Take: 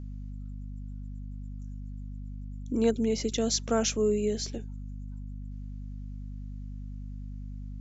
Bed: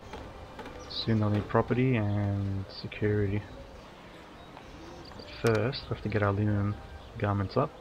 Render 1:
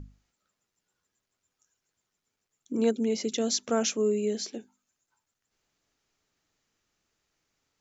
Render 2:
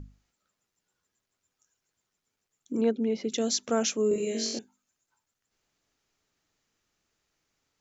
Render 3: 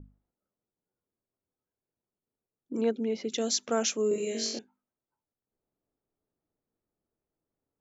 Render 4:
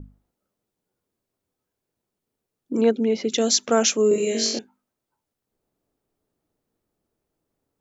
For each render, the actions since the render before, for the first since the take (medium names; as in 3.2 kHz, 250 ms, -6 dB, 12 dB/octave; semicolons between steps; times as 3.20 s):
hum notches 50/100/150/200/250 Hz
2.81–3.30 s: distance through air 230 m; 4.09–4.59 s: flutter echo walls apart 3.8 m, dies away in 0.77 s
level-controlled noise filter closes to 530 Hz, open at -25.5 dBFS; bass shelf 230 Hz -7 dB
trim +9 dB